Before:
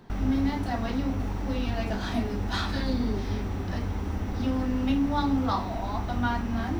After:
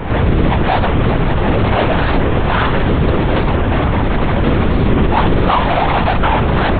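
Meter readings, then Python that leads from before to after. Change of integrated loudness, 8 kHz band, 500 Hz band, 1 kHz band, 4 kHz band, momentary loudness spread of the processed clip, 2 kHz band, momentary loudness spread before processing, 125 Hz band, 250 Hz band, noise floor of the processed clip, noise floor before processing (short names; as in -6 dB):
+14.5 dB, n/a, +19.0 dB, +16.5 dB, +13.5 dB, 2 LU, +17.5 dB, 6 LU, +16.0 dB, +10.5 dB, -14 dBFS, -32 dBFS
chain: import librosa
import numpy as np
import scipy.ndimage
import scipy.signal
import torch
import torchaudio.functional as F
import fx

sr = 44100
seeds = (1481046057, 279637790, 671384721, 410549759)

p1 = scipy.signal.sosfilt(scipy.signal.butter(2, 1300.0, 'lowpass', fs=sr, output='sos'), x)
p2 = fx.low_shelf(p1, sr, hz=260.0, db=-6.5)
p3 = fx.fuzz(p2, sr, gain_db=55.0, gate_db=-58.0)
p4 = p2 + (p3 * 10.0 ** (-8.0 / 20.0))
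p5 = fx.lpc_vocoder(p4, sr, seeds[0], excitation='whisper', order=10)
p6 = fx.record_warp(p5, sr, rpm=45.0, depth_cents=100.0)
y = p6 * 10.0 ** (7.0 / 20.0)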